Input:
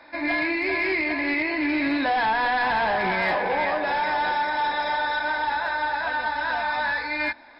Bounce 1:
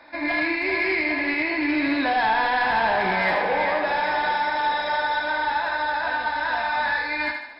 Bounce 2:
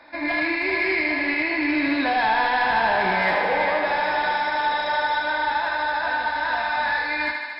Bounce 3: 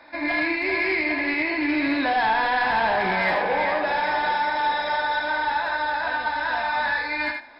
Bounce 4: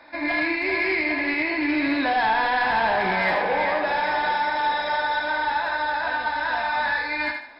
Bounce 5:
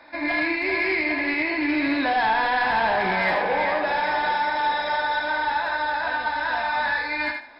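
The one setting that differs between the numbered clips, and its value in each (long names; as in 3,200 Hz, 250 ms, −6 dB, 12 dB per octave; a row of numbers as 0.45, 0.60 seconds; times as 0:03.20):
feedback echo with a high-pass in the loop, feedback: 51, 79, 15, 35, 23%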